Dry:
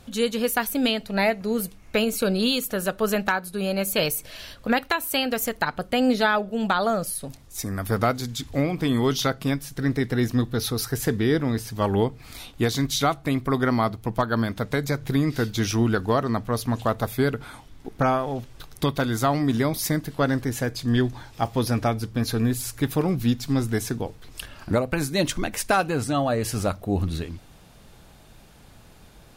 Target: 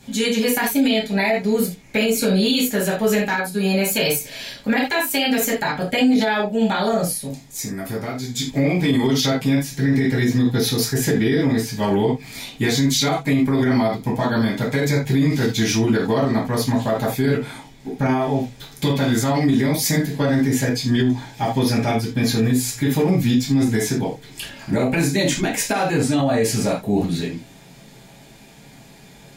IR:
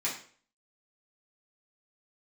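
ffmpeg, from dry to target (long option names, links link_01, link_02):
-filter_complex "[0:a]asettb=1/sr,asplit=3[link_01][link_02][link_03];[link_01]atrim=end=7.164[link_04];[link_02]atrim=start=7.16:end=8.36,asetpts=PTS-STARTPTS,afade=type=in:duration=0.004:curve=qsin,afade=type=out:start_time=1.196:duration=0.004:curve=qsin,acompressor=threshold=-32dB:ratio=3[link_05];[link_03]atrim=start=8.356[link_06];[link_04][link_05]acrossfade=duration=0.004:curve1=hsin:curve2=qsin[link_07];[link_07][link_06]acrossfade=duration=0.004:curve1=qsin:curve2=hsin[link_08];[1:a]atrim=start_sample=2205,atrim=end_sample=4410[link_09];[link_08][link_09]afir=irnorm=-1:irlink=0,alimiter=limit=-12.5dB:level=0:latency=1:release=31,equalizer=frequency=1200:width=2.5:gain=-8.5,volume=3dB"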